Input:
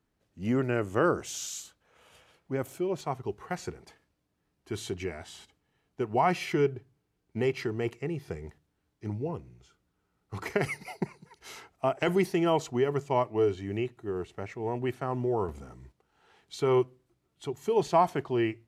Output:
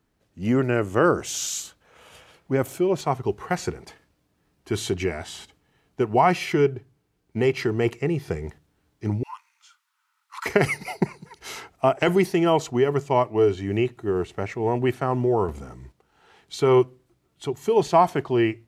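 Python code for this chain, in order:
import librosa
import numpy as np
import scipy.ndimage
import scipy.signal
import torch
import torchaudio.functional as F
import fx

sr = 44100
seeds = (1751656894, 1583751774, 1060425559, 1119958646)

p1 = fx.steep_highpass(x, sr, hz=900.0, slope=96, at=(9.23, 10.46))
p2 = fx.rider(p1, sr, range_db=3, speed_s=0.5)
y = p1 + F.gain(torch.from_numpy(p2), 2.5).numpy()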